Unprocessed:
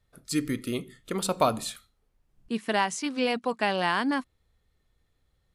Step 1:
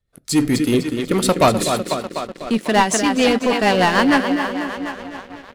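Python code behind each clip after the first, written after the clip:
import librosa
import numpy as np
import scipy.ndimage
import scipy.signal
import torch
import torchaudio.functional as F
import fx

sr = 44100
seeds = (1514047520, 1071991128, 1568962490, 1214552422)

y = fx.echo_tape(x, sr, ms=249, feedback_pct=72, wet_db=-6.5, lp_hz=5500.0, drive_db=14.0, wow_cents=21)
y = fx.leveller(y, sr, passes=3)
y = fx.rotary(y, sr, hz=6.7)
y = F.gain(torch.from_numpy(y), 4.0).numpy()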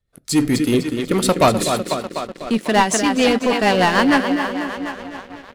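y = x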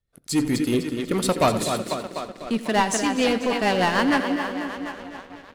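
y = fx.echo_feedback(x, sr, ms=86, feedback_pct=47, wet_db=-15.0)
y = F.gain(torch.from_numpy(y), -5.5).numpy()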